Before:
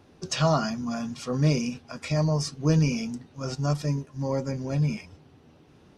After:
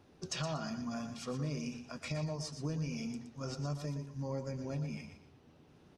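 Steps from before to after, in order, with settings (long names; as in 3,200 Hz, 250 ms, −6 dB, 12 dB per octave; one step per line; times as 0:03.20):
downward compressor, threshold −28 dBFS, peak gain reduction 10.5 dB
on a send: repeating echo 119 ms, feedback 28%, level −9 dB
on the sum: level −7 dB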